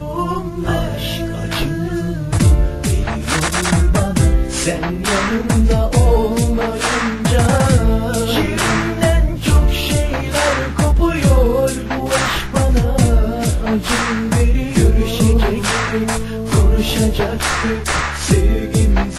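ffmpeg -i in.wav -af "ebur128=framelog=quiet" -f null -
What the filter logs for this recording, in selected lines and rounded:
Integrated loudness:
  I:         -16.3 LUFS
  Threshold: -26.3 LUFS
Loudness range:
  LRA:         1.5 LU
  Threshold: -36.1 LUFS
  LRA low:   -16.8 LUFS
  LRA high:  -15.3 LUFS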